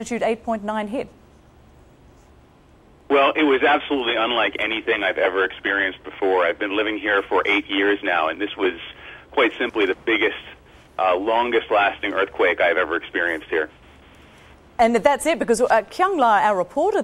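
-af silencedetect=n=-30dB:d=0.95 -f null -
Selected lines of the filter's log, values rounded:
silence_start: 1.05
silence_end: 3.10 | silence_duration: 2.05
silence_start: 13.65
silence_end: 14.79 | silence_duration: 1.14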